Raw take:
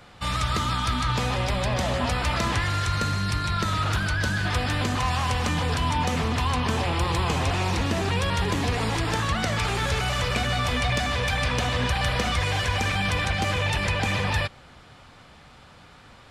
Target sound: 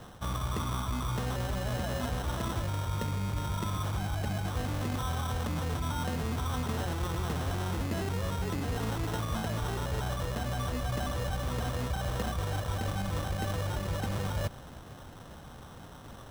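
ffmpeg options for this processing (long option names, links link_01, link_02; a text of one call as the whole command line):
ffmpeg -i in.wav -af "tiltshelf=frequency=1200:gain=4.5,areverse,acompressor=threshold=-30dB:ratio=6,areverse,acrusher=samples=19:mix=1:aa=0.000001" out.wav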